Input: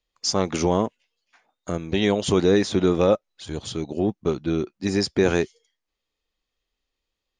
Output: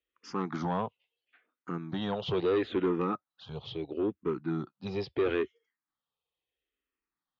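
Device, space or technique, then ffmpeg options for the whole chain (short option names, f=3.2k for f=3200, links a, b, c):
barber-pole phaser into a guitar amplifier: -filter_complex "[0:a]asplit=2[a][b];[b]afreqshift=-0.75[c];[a][c]amix=inputs=2:normalize=1,asoftclip=type=tanh:threshold=-17.5dB,highpass=87,equalizer=f=87:t=q:w=4:g=-8,equalizer=f=210:t=q:w=4:g=-5,equalizer=f=610:t=q:w=4:g=-6,equalizer=f=1.3k:t=q:w=4:g=3,equalizer=f=2.2k:t=q:w=4:g=-3,lowpass=f=3.4k:w=0.5412,lowpass=f=3.4k:w=1.3066,volume=-3dB"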